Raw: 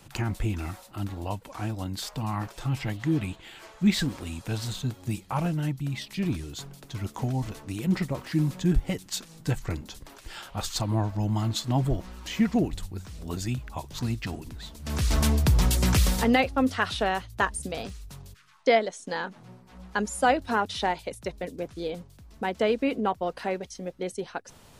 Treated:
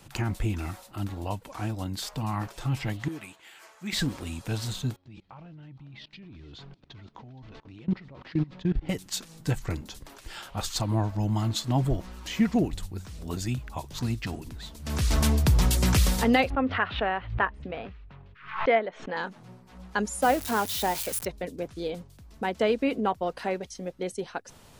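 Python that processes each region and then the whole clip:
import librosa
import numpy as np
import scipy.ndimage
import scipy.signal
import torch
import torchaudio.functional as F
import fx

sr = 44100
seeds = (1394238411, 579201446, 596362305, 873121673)

y = fx.chain(x, sr, fx.highpass(hz=1200.0, slope=6),
    fx.peak_eq(hz=3600.0, db=-6.5, octaves=0.97), at=(3.08, 3.93))
y = fx.chain(y, sr, fx.lowpass(hz=4300.0, slope=24),
    fx.level_steps(step_db=23),
    fx.echo_single(ms=470, db=-21.5), at=(4.96, 8.89))
y = fx.chain(y, sr, fx.lowpass(hz=2600.0, slope=24),
    fx.low_shelf(hz=430.0, db=-5.0),
    fx.pre_swell(db_per_s=110.0), at=(16.5, 19.17))
y = fx.chain(y, sr, fx.crossing_spikes(level_db=-17.5),
    fx.high_shelf(hz=2000.0, db=-7.5), at=(20.22, 21.25))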